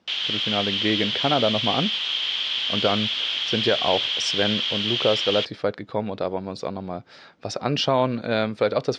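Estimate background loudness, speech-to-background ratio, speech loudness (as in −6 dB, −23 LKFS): −23.0 LKFS, −3.0 dB, −26.0 LKFS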